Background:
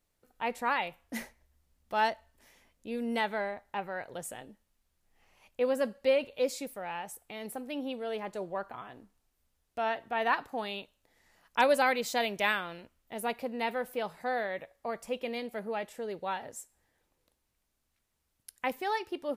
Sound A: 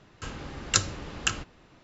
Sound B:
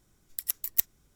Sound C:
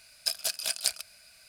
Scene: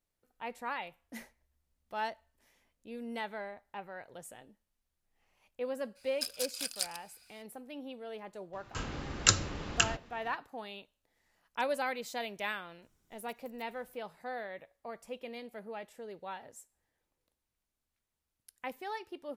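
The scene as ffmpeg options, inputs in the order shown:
ffmpeg -i bed.wav -i cue0.wav -i cue1.wav -i cue2.wav -filter_complex "[0:a]volume=-8dB[link_01];[3:a]equalizer=frequency=620:width=5.5:gain=-13[link_02];[2:a]acompressor=threshold=-46dB:ratio=12:attack=0.81:release=37:knee=1:detection=rms[link_03];[link_02]atrim=end=1.48,asetpts=PTS-STARTPTS,volume=-7dB,afade=type=in:duration=0.02,afade=type=out:start_time=1.46:duration=0.02,adelay=5950[link_04];[1:a]atrim=end=1.83,asetpts=PTS-STARTPTS,volume=-0.5dB,afade=type=in:duration=0.004:curve=hsin,afade=type=out:start_time=1.826:duration=0.004:curve=hsin,adelay=8530[link_05];[link_03]atrim=end=1.15,asetpts=PTS-STARTPTS,volume=-8dB,afade=type=in:duration=0.004:curve=hsin,afade=type=out:start_time=1.146:duration=0.004:curve=hsin,adelay=12820[link_06];[link_01][link_04][link_05][link_06]amix=inputs=4:normalize=0" out.wav

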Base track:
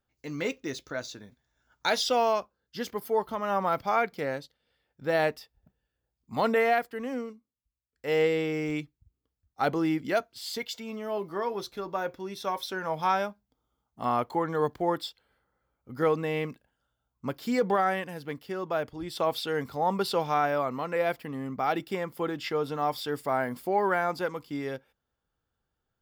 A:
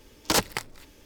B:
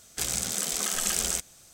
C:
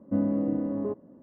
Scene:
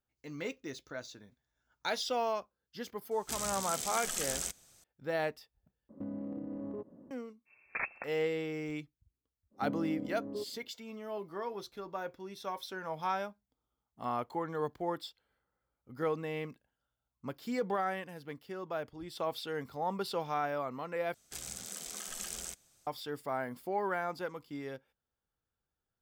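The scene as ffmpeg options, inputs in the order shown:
ffmpeg -i bed.wav -i cue0.wav -i cue1.wav -i cue2.wav -filter_complex "[2:a]asplit=2[link_01][link_02];[3:a]asplit=2[link_03][link_04];[0:a]volume=-8dB[link_05];[link_03]acompressor=threshold=-32dB:ratio=6:attack=0.36:release=144:knee=1:detection=rms[link_06];[1:a]lowpass=frequency=2300:width_type=q:width=0.5098,lowpass=frequency=2300:width_type=q:width=0.6013,lowpass=frequency=2300:width_type=q:width=0.9,lowpass=frequency=2300:width_type=q:width=2.563,afreqshift=-2700[link_07];[link_04]equalizer=frequency=410:width=3.9:gain=6.5[link_08];[link_05]asplit=3[link_09][link_10][link_11];[link_09]atrim=end=5.894[link_12];[link_06]atrim=end=1.22,asetpts=PTS-STARTPTS,volume=-3.5dB[link_13];[link_10]atrim=start=7.106:end=21.144[link_14];[link_02]atrim=end=1.73,asetpts=PTS-STARTPTS,volume=-14dB[link_15];[link_11]atrim=start=22.866[link_16];[link_01]atrim=end=1.73,asetpts=PTS-STARTPTS,volume=-8.5dB,afade=type=in:duration=0.004:curve=hsin,afade=type=out:start_time=1.726:duration=0.004:curve=hsin,adelay=3110[link_17];[link_07]atrim=end=1.05,asetpts=PTS-STARTPTS,volume=-11dB,afade=type=in:duration=0.05,afade=type=out:start_time=1:duration=0.05,adelay=7450[link_18];[link_08]atrim=end=1.22,asetpts=PTS-STARTPTS,volume=-13dB,afade=type=in:duration=0.05,afade=type=out:start_time=1.17:duration=0.05,adelay=9500[link_19];[link_12][link_13]acrossfade=duration=0.004:curve1=hsin:curve2=hsin[link_20];[link_20][link_14]acrossfade=duration=0.004:curve1=hsin:curve2=hsin[link_21];[link_21][link_15]acrossfade=duration=0.004:curve1=hsin:curve2=hsin[link_22];[link_22][link_16]acrossfade=duration=0.004:curve1=hsin:curve2=hsin[link_23];[link_23][link_17][link_18][link_19]amix=inputs=4:normalize=0" out.wav

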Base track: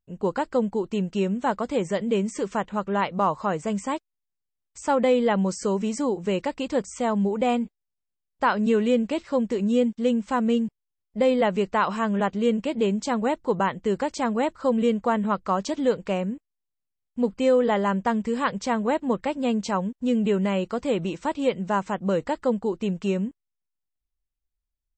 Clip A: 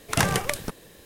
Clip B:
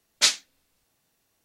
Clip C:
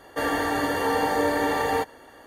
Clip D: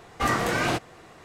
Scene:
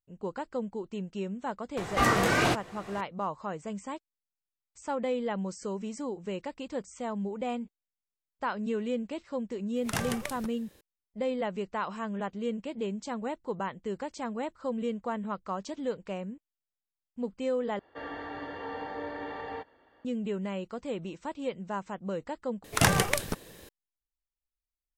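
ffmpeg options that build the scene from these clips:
ffmpeg -i bed.wav -i cue0.wav -i cue1.wav -i cue2.wav -i cue3.wav -filter_complex "[1:a]asplit=2[link_01][link_02];[0:a]volume=-10.5dB[link_03];[4:a]acompressor=mode=upward:threshold=-27dB:ratio=2.5:attack=11:release=812:knee=2.83:detection=peak[link_04];[3:a]lowpass=frequency=3800:width=0.5412,lowpass=frequency=3800:width=1.3066[link_05];[link_03]asplit=3[link_06][link_07][link_08];[link_06]atrim=end=17.794[link_09];[link_05]atrim=end=2.26,asetpts=PTS-STARTPTS,volume=-14.5dB[link_10];[link_07]atrim=start=20.046:end=22.644[link_11];[link_02]atrim=end=1.05,asetpts=PTS-STARTPTS,volume=-0.5dB[link_12];[link_08]atrim=start=23.686[link_13];[link_04]atrim=end=1.24,asetpts=PTS-STARTPTS,afade=type=in:duration=0.004:curve=hsin,afade=type=out:start_time=1.236:duration=0.004:curve=hsin,adelay=1770[link_14];[link_01]atrim=end=1.05,asetpts=PTS-STARTPTS,volume=-10dB,afade=type=in:duration=0.004:curve=hsin,afade=type=out:start_time=1.046:duration=0.004:curve=hsin,adelay=9760[link_15];[link_09][link_10]acrossfade=duration=0.004:curve1=hsin:curve2=hsin[link_16];[link_16][link_11]acrossfade=duration=0.004:curve1=hsin:curve2=hsin[link_17];[link_17][link_12]acrossfade=duration=0.004:curve1=hsin:curve2=hsin[link_18];[link_18][link_13]acrossfade=duration=0.004:curve1=hsin:curve2=hsin[link_19];[link_19][link_14][link_15]amix=inputs=3:normalize=0" out.wav

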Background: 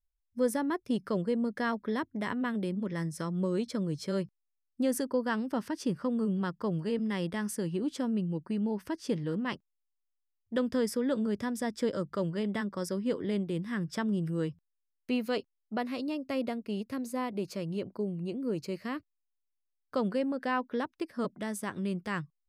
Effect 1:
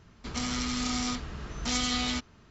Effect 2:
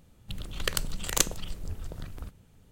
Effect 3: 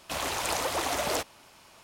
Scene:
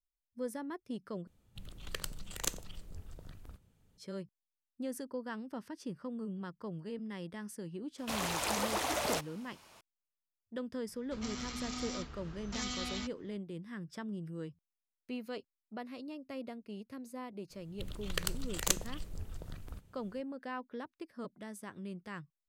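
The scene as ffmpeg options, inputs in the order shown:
ffmpeg -i bed.wav -i cue0.wav -i cue1.wav -i cue2.wav -filter_complex "[2:a]asplit=2[link_01][link_02];[0:a]volume=-10.5dB[link_03];[link_01]aecho=1:1:89:0.075[link_04];[link_03]asplit=2[link_05][link_06];[link_05]atrim=end=1.274[link_07];[link_04]atrim=end=2.71,asetpts=PTS-STARTPTS,volume=-11dB[link_08];[link_06]atrim=start=3.976[link_09];[3:a]atrim=end=1.83,asetpts=PTS-STARTPTS,volume=-4.5dB,afade=type=in:duration=0.004:curve=hsin,afade=type=out:start_time=1.826:duration=0.004:curve=hsin,adelay=7980[link_10];[1:a]atrim=end=2.5,asetpts=PTS-STARTPTS,volume=-10dB,afade=type=in:duration=0.004:curve=hsin,afade=type=out:start_time=2.496:duration=0.004:curve=hsin,adelay=10870[link_11];[link_02]atrim=end=2.71,asetpts=PTS-STARTPTS,volume=-6dB,afade=type=in:duration=0.004:curve=hsin,afade=type=out:start_time=2.706:duration=0.004:curve=hsin,adelay=17500[link_12];[link_07][link_08]acrossfade=duration=0.004:curve1=hsin:curve2=hsin[link_13];[link_13][link_09]acrossfade=duration=0.004:curve1=hsin:curve2=hsin[link_14];[link_14][link_10][link_11][link_12]amix=inputs=4:normalize=0" out.wav

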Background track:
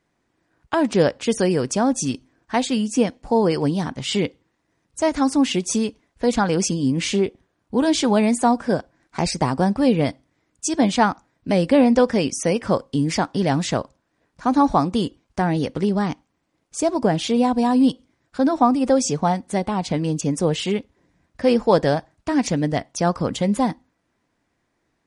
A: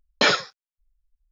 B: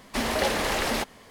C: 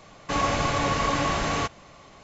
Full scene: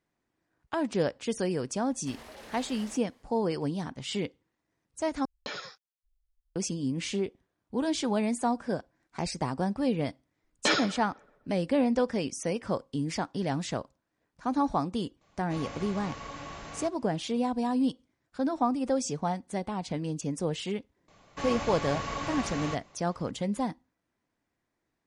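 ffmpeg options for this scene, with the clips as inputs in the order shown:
ffmpeg -i bed.wav -i cue0.wav -i cue1.wav -i cue2.wav -filter_complex "[1:a]asplit=2[link_01][link_02];[3:a]asplit=2[link_03][link_04];[0:a]volume=-10.5dB[link_05];[2:a]alimiter=limit=-21.5dB:level=0:latency=1:release=147[link_06];[link_01]acompressor=threshold=-28dB:ratio=6:attack=3.2:release=140:knee=1:detection=peak[link_07];[link_02]asplit=2[link_08][link_09];[link_09]adelay=126,lowpass=frequency=2100:poles=1,volume=-14dB,asplit=2[link_10][link_11];[link_11]adelay=126,lowpass=frequency=2100:poles=1,volume=0.55,asplit=2[link_12][link_13];[link_13]adelay=126,lowpass=frequency=2100:poles=1,volume=0.55,asplit=2[link_14][link_15];[link_15]adelay=126,lowpass=frequency=2100:poles=1,volume=0.55,asplit=2[link_16][link_17];[link_17]adelay=126,lowpass=frequency=2100:poles=1,volume=0.55,asplit=2[link_18][link_19];[link_19]adelay=126,lowpass=frequency=2100:poles=1,volume=0.55[link_20];[link_08][link_10][link_12][link_14][link_16][link_18][link_20]amix=inputs=7:normalize=0[link_21];[link_05]asplit=2[link_22][link_23];[link_22]atrim=end=5.254[link_24];[link_07]atrim=end=1.31,asetpts=PTS-STARTPTS,volume=-7dB[link_25];[link_23]atrim=start=6.556[link_26];[link_06]atrim=end=1.3,asetpts=PTS-STARTPTS,volume=-16.5dB,afade=type=in:duration=0.004:curve=hsin,afade=type=out:start_time=1.296:duration=0.004:curve=hsin,adelay=1930[link_27];[link_21]atrim=end=1.31,asetpts=PTS-STARTPTS,volume=-7.5dB,afade=type=in:duration=0.004:curve=hsin,afade=type=out:start_time=1.306:duration=0.004:curve=hsin,adelay=10440[link_28];[link_03]atrim=end=2.23,asetpts=PTS-STARTPTS,volume=-17dB,afade=type=in:duration=0.004:curve=hsin,afade=type=out:start_time=2.226:duration=0.004:curve=hsin,adelay=15210[link_29];[link_04]atrim=end=2.23,asetpts=PTS-STARTPTS,volume=-10dB,afade=type=in:duration=0.004:curve=hsin,afade=type=out:start_time=2.226:duration=0.004:curve=hsin,adelay=21080[link_30];[link_24][link_25]acrossfade=duration=0.004:curve1=hsin:curve2=hsin[link_31];[link_31][link_26]acrossfade=duration=0.004:curve1=hsin:curve2=hsin[link_32];[link_32][link_27][link_28][link_29][link_30]amix=inputs=5:normalize=0" out.wav

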